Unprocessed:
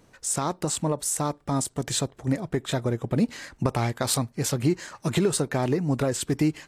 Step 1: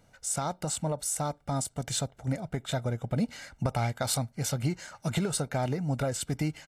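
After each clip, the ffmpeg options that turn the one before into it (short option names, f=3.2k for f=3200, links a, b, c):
-af "aecho=1:1:1.4:0.57,volume=-5.5dB"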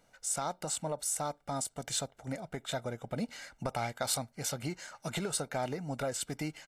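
-af "equalizer=f=84:w=0.53:g=-12,volume=-2dB"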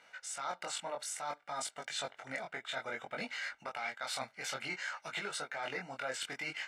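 -af "bandpass=f=2k:t=q:w=1.3:csg=0,areverse,acompressor=threshold=-51dB:ratio=6,areverse,flanger=delay=19.5:depth=3.8:speed=0.58,volume=17.5dB"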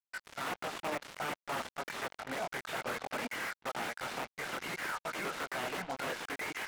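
-af "aeval=exprs='(mod(53.1*val(0)+1,2)-1)/53.1':c=same,highpass=170,lowpass=2k,acrusher=bits=7:mix=0:aa=0.5,volume=7.5dB"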